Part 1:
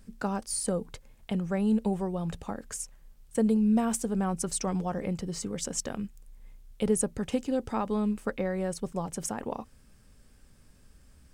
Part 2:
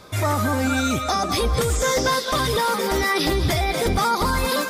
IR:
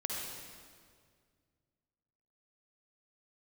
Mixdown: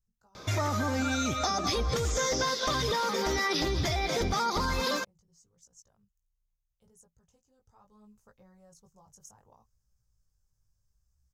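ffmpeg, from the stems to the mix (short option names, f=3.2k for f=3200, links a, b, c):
-filter_complex "[0:a]firequalizer=gain_entry='entry(120,0);entry(250,-21);entry(370,-15);entry(940,-6);entry(2300,-19);entry(6400,0);entry(13000,9)':delay=0.05:min_phase=1,flanger=delay=17:depth=3.4:speed=0.71,volume=-13dB,afade=t=in:st=7.6:d=0.64:silence=0.375837[a];[1:a]adelay=350,volume=-1.5dB[b];[a][b]amix=inputs=2:normalize=0,highshelf=f=7.5k:t=q:w=3:g=-6.5,acompressor=threshold=-27dB:ratio=4"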